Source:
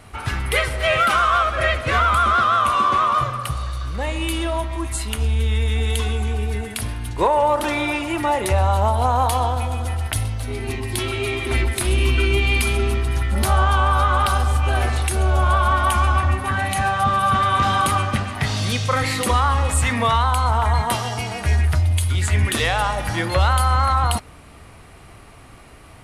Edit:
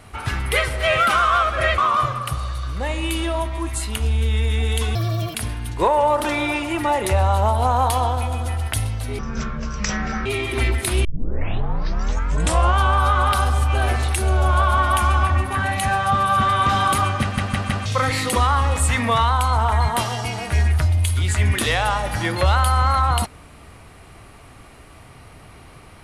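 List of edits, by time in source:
1.78–2.96 cut
6.13–6.74 speed 154%
10.58–11.19 speed 57%
11.98 tape start 1.75 s
18.15 stutter in place 0.16 s, 4 plays

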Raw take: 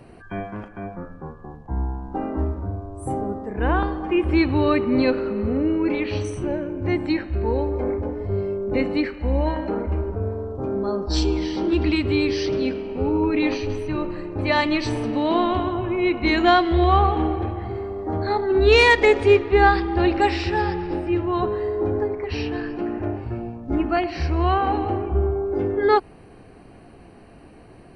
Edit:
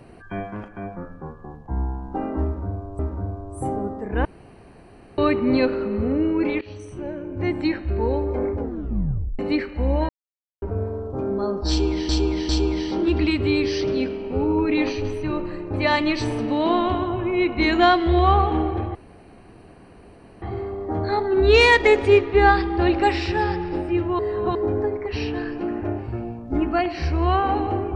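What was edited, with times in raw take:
2.44–2.99 loop, 2 plays
3.7–4.63 room tone
6.06–7.11 fade in, from -17 dB
8.03 tape stop 0.81 s
9.54–10.07 mute
11.14–11.54 loop, 3 plays
17.6 insert room tone 1.47 s
21.37–21.73 reverse

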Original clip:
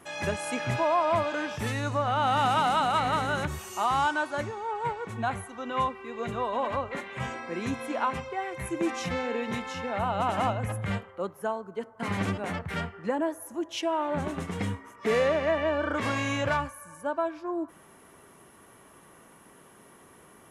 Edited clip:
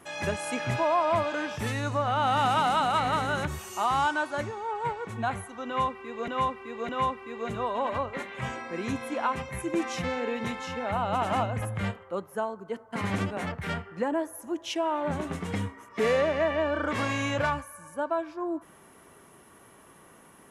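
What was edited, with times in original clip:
5.67–6.28 loop, 3 plays
8.27–8.56 cut

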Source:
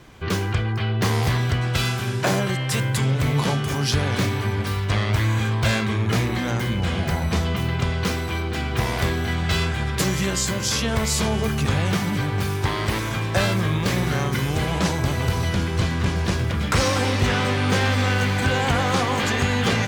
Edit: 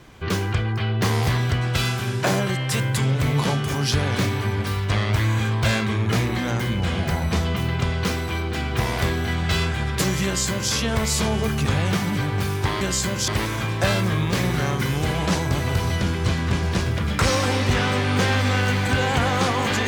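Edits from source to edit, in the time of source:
10.25–10.72 copy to 12.81

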